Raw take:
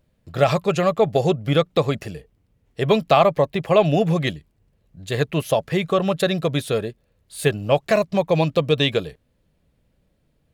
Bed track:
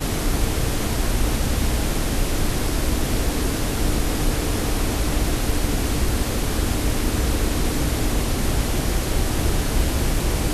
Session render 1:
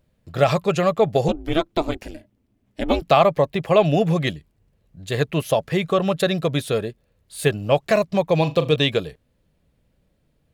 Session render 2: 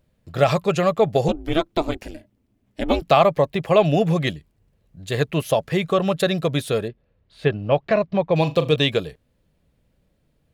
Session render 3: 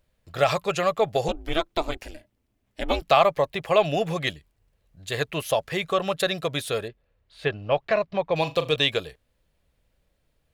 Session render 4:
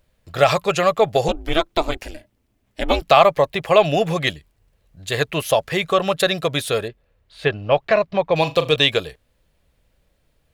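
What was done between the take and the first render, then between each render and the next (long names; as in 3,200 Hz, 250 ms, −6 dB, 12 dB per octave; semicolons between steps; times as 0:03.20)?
0:01.28–0:03.02: ring modulation 160 Hz; 0:08.36–0:08.76: flutter between parallel walls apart 6.8 metres, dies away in 0.21 s
0:06.88–0:08.36: high-frequency loss of the air 250 metres
parametric band 190 Hz −11 dB 2.5 octaves
level +6 dB; brickwall limiter −1 dBFS, peak gain reduction 1.5 dB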